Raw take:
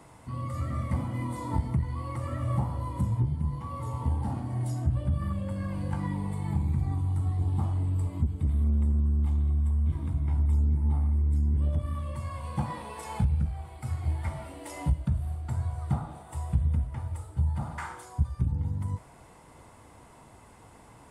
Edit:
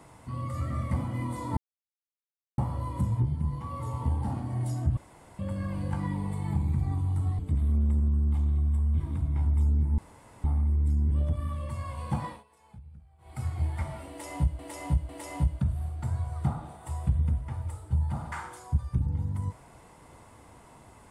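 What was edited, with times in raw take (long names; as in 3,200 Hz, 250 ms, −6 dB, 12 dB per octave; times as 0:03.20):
0:01.57–0:02.58: silence
0:04.97–0:05.39: fill with room tone
0:07.39–0:08.31: remove
0:10.90: splice in room tone 0.46 s
0:12.71–0:13.83: duck −22.5 dB, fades 0.19 s
0:14.55–0:15.05: repeat, 3 plays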